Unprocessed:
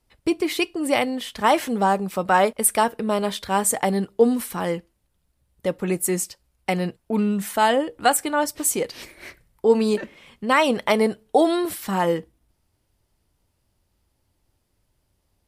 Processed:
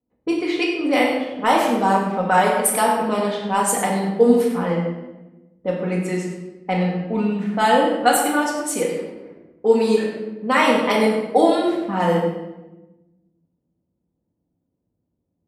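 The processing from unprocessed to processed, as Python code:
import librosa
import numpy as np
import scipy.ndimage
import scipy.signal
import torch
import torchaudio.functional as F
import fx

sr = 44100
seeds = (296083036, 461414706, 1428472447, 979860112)

p1 = scipy.signal.sosfilt(scipy.signal.butter(2, 170.0, 'highpass', fs=sr, output='sos'), x)
p2 = fx.env_lowpass(p1, sr, base_hz=380.0, full_db=-16.0)
p3 = p2 + fx.echo_single(p2, sr, ms=99, db=-12.0, dry=0)
p4 = fx.room_shoebox(p3, sr, seeds[0], volume_m3=510.0, walls='mixed', distance_m=1.9)
y = p4 * 10.0 ** (-2.0 / 20.0)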